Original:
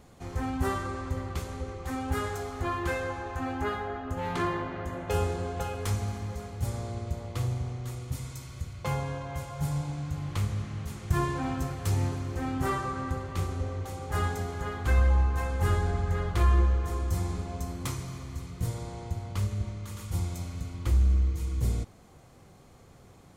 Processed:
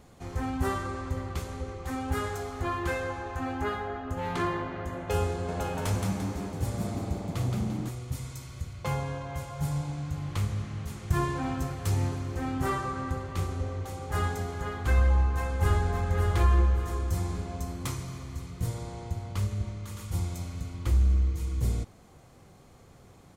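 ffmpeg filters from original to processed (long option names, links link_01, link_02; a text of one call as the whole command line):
ffmpeg -i in.wav -filter_complex "[0:a]asettb=1/sr,asplit=3[link_01][link_02][link_03];[link_01]atrim=end=5.314[link_04];[link_02]atrim=start=5.31:end=7.89,asetpts=PTS-STARTPTS,afade=type=in:duration=0.004:curve=qsin,afade=type=out:start_time=2.576:duration=0.004:curve=qsin,asplit=6[link_05][link_06][link_07][link_08][link_09][link_10];[link_06]adelay=172,afreqshift=92,volume=-4dB[link_11];[link_07]adelay=344,afreqshift=184,volume=-11.7dB[link_12];[link_08]adelay=516,afreqshift=276,volume=-19.5dB[link_13];[link_09]adelay=688,afreqshift=368,volume=-27.2dB[link_14];[link_10]adelay=860,afreqshift=460,volume=-35dB[link_15];[link_05][link_11][link_12][link_13][link_14][link_15]amix=inputs=6:normalize=0,atrim=end_sample=113778[link_16];[link_03]atrim=start=7.886[link_17];[link_04][link_16]acrossfade=duration=0.004:curve1=hsin:curve2=qsin[link_18];[link_18][link_17]acrossfade=duration=0.004:curve1=qsin:curve2=hsin,asplit=2[link_19][link_20];[link_20]afade=type=in:start_time=15.05:duration=0.01,afade=type=out:start_time=15.89:duration=0.01,aecho=0:1:570|1140|1710|2280:0.530884|0.18581|0.0650333|0.0227617[link_21];[link_19][link_21]amix=inputs=2:normalize=0" out.wav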